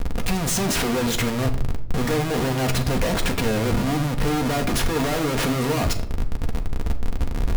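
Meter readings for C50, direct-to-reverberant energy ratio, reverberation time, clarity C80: 12.0 dB, 3.5 dB, 0.60 s, 15.0 dB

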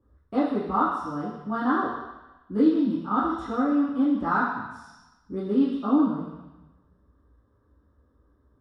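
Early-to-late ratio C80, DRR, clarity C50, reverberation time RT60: 4.5 dB, -10.5 dB, 2.0 dB, 1.0 s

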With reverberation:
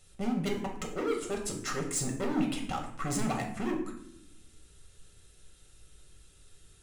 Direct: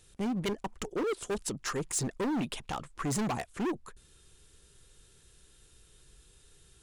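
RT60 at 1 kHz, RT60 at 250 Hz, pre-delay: 0.65 s, 1.2 s, 5 ms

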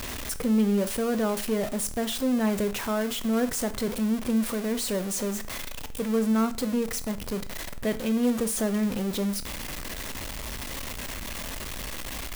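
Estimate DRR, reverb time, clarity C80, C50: 11.5 dB, 0.45 s, 21.5 dB, 16.5 dB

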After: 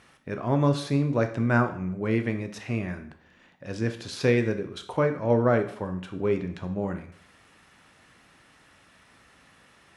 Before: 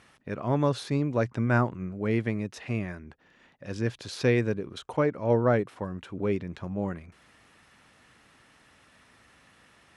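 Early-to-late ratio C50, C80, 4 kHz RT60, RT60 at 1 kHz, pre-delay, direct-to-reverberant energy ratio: 11.5 dB, 15.0 dB, 0.50 s, 0.55 s, 6 ms, 6.5 dB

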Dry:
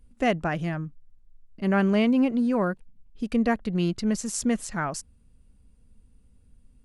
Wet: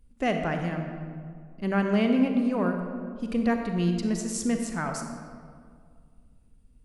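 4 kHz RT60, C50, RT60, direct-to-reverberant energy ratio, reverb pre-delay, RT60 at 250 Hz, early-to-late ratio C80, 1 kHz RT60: 1.1 s, 4.5 dB, 2.1 s, 4.0 dB, 35 ms, 2.3 s, 6.0 dB, 2.0 s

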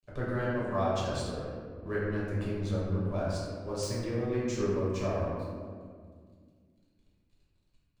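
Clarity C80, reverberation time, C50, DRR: 0.5 dB, 2.0 s, -1.5 dB, -8.0 dB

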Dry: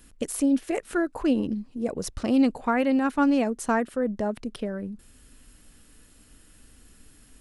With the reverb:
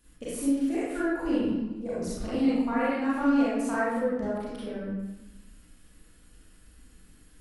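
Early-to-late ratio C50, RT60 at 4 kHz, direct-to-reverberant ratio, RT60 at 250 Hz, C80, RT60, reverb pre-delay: -4.5 dB, 0.75 s, -9.5 dB, 1.2 s, 0.5 dB, 1.1 s, 30 ms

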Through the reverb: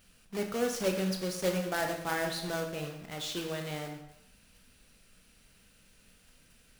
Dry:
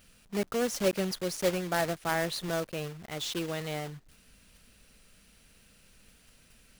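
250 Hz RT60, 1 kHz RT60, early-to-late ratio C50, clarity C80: 0.80 s, 0.90 s, 6.5 dB, 9.0 dB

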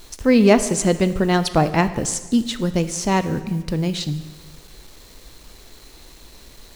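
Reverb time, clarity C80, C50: 1.3 s, 15.0 dB, 13.0 dB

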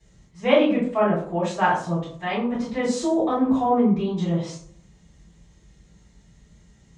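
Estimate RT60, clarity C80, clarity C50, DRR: 0.55 s, 9.5 dB, 5.0 dB, -11.0 dB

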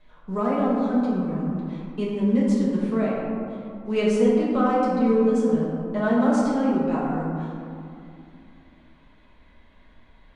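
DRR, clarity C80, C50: -8.0 dB, 0.5 dB, -1.0 dB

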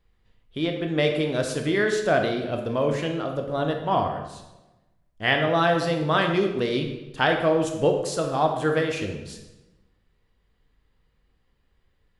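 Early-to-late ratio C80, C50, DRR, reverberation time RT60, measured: 8.0 dB, 6.0 dB, 3.0 dB, 1.1 s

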